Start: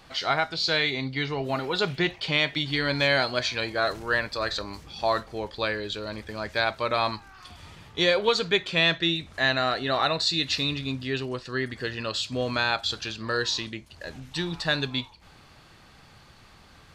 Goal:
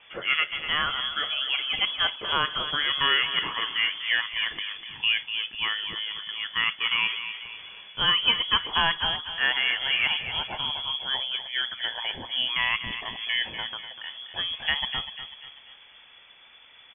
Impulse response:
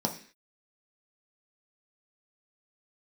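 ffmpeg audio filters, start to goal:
-filter_complex "[0:a]asettb=1/sr,asplit=3[s0][s1][s2];[s0]atrim=end=10.264[s3];[s1]atrim=start=10.26:end=10.86,asetpts=PTS-STARTPTS,afade=t=in:d=0.004:c=qsin,afade=t=out:st=0.596:d=0.004:c=qsin,equalizer=f=1600:w=1.6:g=-5.5[s4];[s2]atrim=start=10.856[s5];[s3][s4]acrossfade=d=0.004:c1=hsin:c2=qsin[s6];[s6][s5]acrossfade=d=0.004:c1=qsin:c2=hsin,asplit=2[s7][s8];[s8]adelay=246,lowpass=f=2500:p=1,volume=0.355,asplit=2[s9][s10];[s10]adelay=246,lowpass=f=2500:p=1,volume=0.5,asplit=2[s11][s12];[s12]adelay=246,lowpass=f=2500:p=1,volume=0.5,asplit=2[s13][s14];[s14]adelay=246,lowpass=f=2500:p=1,volume=0.5,asplit=2[s15][s16];[s16]adelay=246,lowpass=f=2500:p=1,volume=0.5,asplit=2[s17][s18];[s18]adelay=246,lowpass=f=2500:p=1,volume=0.5[s19];[s7][s9][s11][s13][s15][s17][s19]amix=inputs=7:normalize=0,lowpass=f=3000:t=q:w=0.5098,lowpass=f=3000:t=q:w=0.6013,lowpass=f=3000:t=q:w=0.9,lowpass=f=3000:t=q:w=2.563,afreqshift=-3500"

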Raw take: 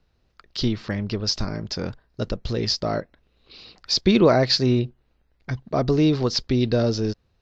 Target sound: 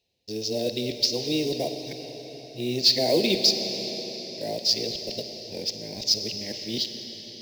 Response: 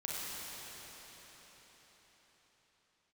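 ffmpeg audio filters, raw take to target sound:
-filter_complex "[0:a]areverse,highpass=f=980:p=1,acrusher=bits=5:mode=log:mix=0:aa=0.000001,asuperstop=centerf=1300:order=4:qfactor=0.68,asplit=2[s0][s1];[1:a]atrim=start_sample=2205[s2];[s1][s2]afir=irnorm=-1:irlink=0,volume=0.501[s3];[s0][s3]amix=inputs=2:normalize=0"

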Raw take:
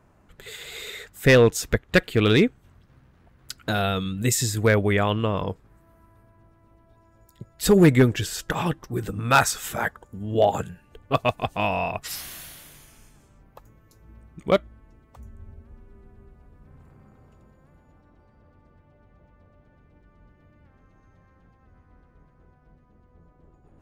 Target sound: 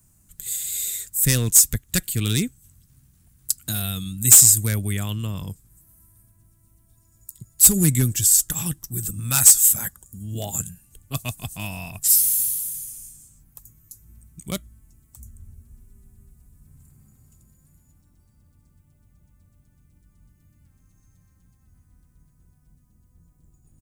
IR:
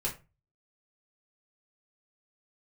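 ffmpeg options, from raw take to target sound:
-filter_complex "[0:a]firequalizer=gain_entry='entry(140,0);entry(460,-24);entry(8000,15)':delay=0.05:min_phase=1,acrossover=split=340[s0][s1];[s1]acontrast=74[s2];[s0][s2]amix=inputs=2:normalize=0,asoftclip=type=hard:threshold=0.596"

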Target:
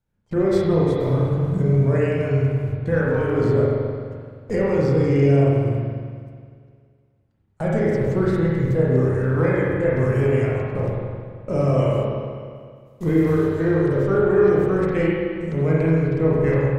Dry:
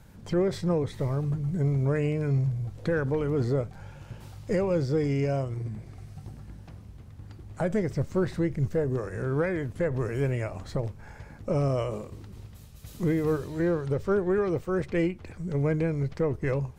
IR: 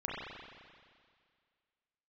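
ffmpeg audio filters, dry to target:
-filter_complex "[0:a]agate=range=0.0355:threshold=0.0158:ratio=16:detection=peak[s0];[1:a]atrim=start_sample=2205[s1];[s0][s1]afir=irnorm=-1:irlink=0,volume=1.5"

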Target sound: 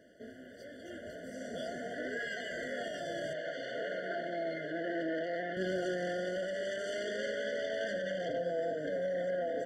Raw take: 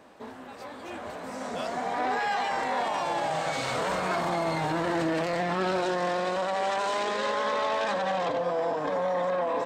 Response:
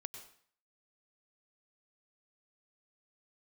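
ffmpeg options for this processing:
-filter_complex "[0:a]asettb=1/sr,asplit=3[s0][s1][s2];[s0]atrim=end=3.334[s3];[s1]atrim=start=3.33:end=5.57,asetpts=PTS-STARTPTS,afade=t=in:d=0.004:c=qsin,afade=t=out:st=2.236:d=0.004:c=qsin,highpass=310,lowpass=3100[s4];[s2]atrim=start=5.566[s5];[s3][s4]acrossfade=d=0.004:c1=hsin:c2=qsin[s6];[s6][s5]acrossfade=d=0.004:c1=qsin:c2=hsin,afftfilt=real='re*eq(mod(floor(b*sr/1024/710),2),0)':imag='im*eq(mod(floor(b*sr/1024/710),2),0)':win_size=1024:overlap=0.75,volume=0.531"

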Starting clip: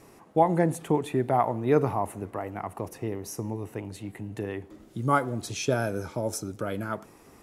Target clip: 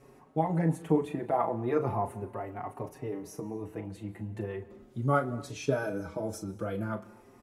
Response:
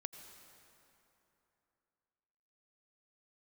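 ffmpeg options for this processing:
-filter_complex "[0:a]highshelf=f=2400:g=-8.5,asplit=2[s0][s1];[1:a]atrim=start_sample=2205,afade=t=out:st=0.31:d=0.01,atrim=end_sample=14112,adelay=37[s2];[s1][s2]afir=irnorm=-1:irlink=0,volume=0.447[s3];[s0][s3]amix=inputs=2:normalize=0,asplit=2[s4][s5];[s5]adelay=5.1,afreqshift=0.4[s6];[s4][s6]amix=inputs=2:normalize=1"

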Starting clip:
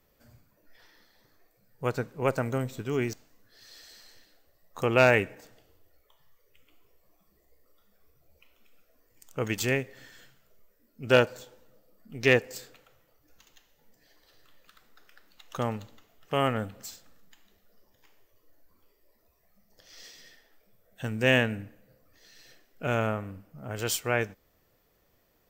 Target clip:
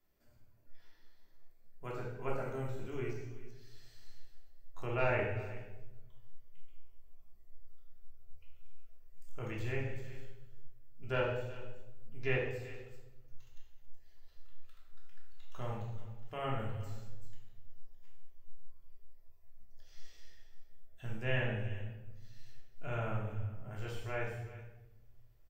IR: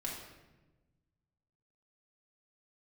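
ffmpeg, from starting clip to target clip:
-filter_complex "[0:a]aecho=1:1:376:0.126,asubboost=boost=9.5:cutoff=72[s0];[1:a]atrim=start_sample=2205,asetrate=57330,aresample=44100[s1];[s0][s1]afir=irnorm=-1:irlink=0,acrossover=split=2900[s2][s3];[s3]acompressor=threshold=0.00224:ratio=4:attack=1:release=60[s4];[s2][s4]amix=inputs=2:normalize=0,volume=0.355"

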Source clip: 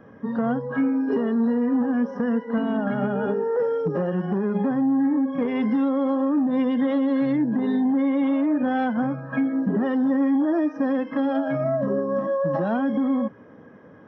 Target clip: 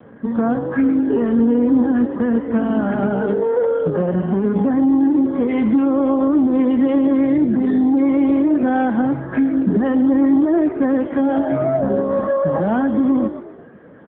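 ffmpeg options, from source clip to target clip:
-filter_complex "[0:a]asettb=1/sr,asplit=3[s0][s1][s2];[s0]atrim=end=1.394[s3];[s1]atrim=start=1.39:end=1.82,asetpts=PTS-STARTPTS,afade=t=in:d=0.004:c=qsin,afade=t=out:st=0.426:d=0.004:c=qsin,equalizer=f=400:t=o:w=0.33:g=10,equalizer=f=630:t=o:w=0.33:g=-5,equalizer=f=2000:t=o:w=0.33:g=-5[s4];[s2]atrim=start=1.816[s5];[s3][s4]acrossfade=d=0.004:c1=hsin:c2=qsin[s6];[s6][s5]acrossfade=d=0.004:c1=qsin:c2=hsin,asplit=5[s7][s8][s9][s10][s11];[s8]adelay=121,afreqshift=47,volume=0.251[s12];[s9]adelay=242,afreqshift=94,volume=0.108[s13];[s10]adelay=363,afreqshift=141,volume=0.0462[s14];[s11]adelay=484,afreqshift=188,volume=0.02[s15];[s7][s12][s13][s14][s15]amix=inputs=5:normalize=0,volume=2" -ar 8000 -c:a libopencore_amrnb -b:a 6700

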